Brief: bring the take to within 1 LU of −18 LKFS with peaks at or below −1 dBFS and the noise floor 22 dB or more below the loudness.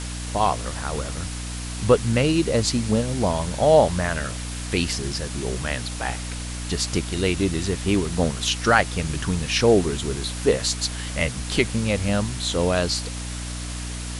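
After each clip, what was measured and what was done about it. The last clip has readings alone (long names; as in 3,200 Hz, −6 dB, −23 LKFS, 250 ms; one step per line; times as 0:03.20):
mains hum 60 Hz; hum harmonics up to 300 Hz; level of the hum −29 dBFS; background noise floor −31 dBFS; target noise floor −46 dBFS; integrated loudness −23.5 LKFS; sample peak −1.5 dBFS; target loudness −18.0 LKFS
→ hum removal 60 Hz, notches 5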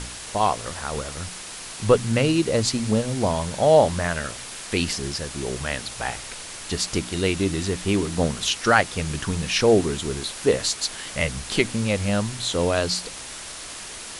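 mains hum none found; background noise floor −37 dBFS; target noise floor −46 dBFS
→ broadband denoise 9 dB, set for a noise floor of −37 dBFS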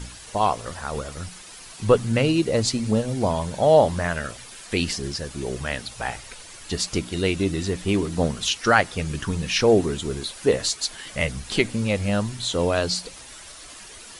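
background noise floor −43 dBFS; target noise floor −46 dBFS
→ broadband denoise 6 dB, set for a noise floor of −43 dBFS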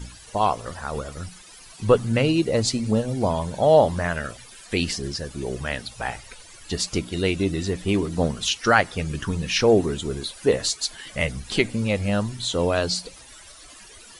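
background noise floor −46 dBFS; integrated loudness −23.5 LKFS; sample peak −2.0 dBFS; target loudness −18.0 LKFS
→ level +5.5 dB
brickwall limiter −1 dBFS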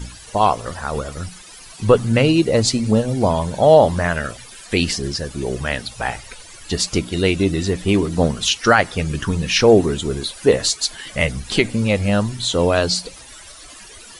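integrated loudness −18.5 LKFS; sample peak −1.0 dBFS; background noise floor −41 dBFS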